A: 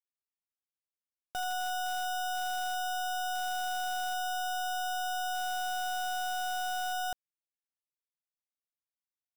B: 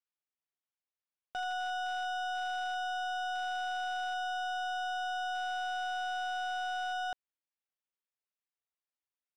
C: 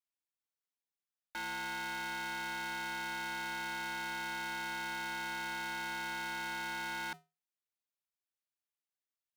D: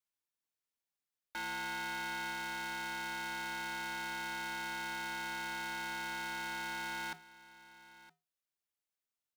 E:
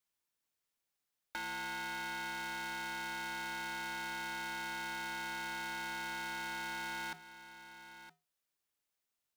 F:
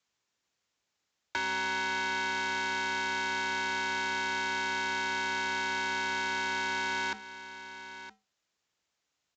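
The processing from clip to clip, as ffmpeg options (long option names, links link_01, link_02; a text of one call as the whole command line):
ffmpeg -i in.wav -af "lowpass=3500,lowshelf=frequency=280:gain=-9.5" out.wav
ffmpeg -i in.wav -af "afreqshift=440,aeval=exprs='val(0)*sgn(sin(2*PI*280*n/s))':channel_layout=same,volume=-4dB" out.wav
ffmpeg -i in.wav -af "aecho=1:1:966:0.112" out.wav
ffmpeg -i in.wav -af "acompressor=threshold=-45dB:ratio=3,volume=4.5dB" out.wav
ffmpeg -i in.wav -af "aresample=16000,aresample=44100,afreqshift=45,volume=9dB" out.wav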